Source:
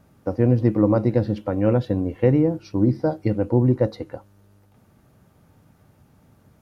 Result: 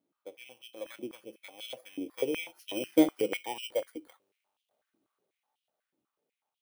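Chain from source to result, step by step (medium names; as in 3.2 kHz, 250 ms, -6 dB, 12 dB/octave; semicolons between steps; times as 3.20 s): bit-reversed sample order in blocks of 16 samples; Doppler pass-by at 3.01 s, 8 m/s, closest 2.5 m; step-sequenced high-pass 8.1 Hz 310–3100 Hz; trim -7 dB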